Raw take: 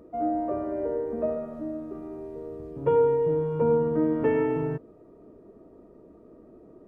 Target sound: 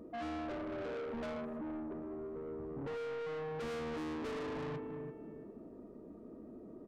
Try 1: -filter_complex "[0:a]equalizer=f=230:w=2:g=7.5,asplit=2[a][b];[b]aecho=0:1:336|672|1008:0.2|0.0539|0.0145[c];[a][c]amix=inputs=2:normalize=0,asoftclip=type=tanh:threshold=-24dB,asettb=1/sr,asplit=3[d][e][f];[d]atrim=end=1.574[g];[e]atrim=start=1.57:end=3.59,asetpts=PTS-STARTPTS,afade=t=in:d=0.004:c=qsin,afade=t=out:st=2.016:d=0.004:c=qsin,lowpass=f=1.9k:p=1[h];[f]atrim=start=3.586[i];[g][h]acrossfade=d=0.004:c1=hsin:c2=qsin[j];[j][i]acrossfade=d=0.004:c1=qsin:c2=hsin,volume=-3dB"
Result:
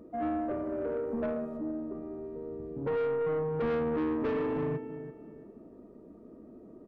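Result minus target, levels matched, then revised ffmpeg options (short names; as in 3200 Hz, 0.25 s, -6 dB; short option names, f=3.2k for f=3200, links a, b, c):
soft clip: distortion -6 dB
-filter_complex "[0:a]equalizer=f=230:w=2:g=7.5,asplit=2[a][b];[b]aecho=0:1:336|672|1008:0.2|0.0539|0.0145[c];[a][c]amix=inputs=2:normalize=0,asoftclip=type=tanh:threshold=-36dB,asettb=1/sr,asplit=3[d][e][f];[d]atrim=end=1.574[g];[e]atrim=start=1.57:end=3.59,asetpts=PTS-STARTPTS,afade=t=in:d=0.004:c=qsin,afade=t=out:st=2.016:d=0.004:c=qsin,lowpass=f=1.9k:p=1[h];[f]atrim=start=3.586[i];[g][h]acrossfade=d=0.004:c1=hsin:c2=qsin[j];[j][i]acrossfade=d=0.004:c1=qsin:c2=hsin,volume=-3dB"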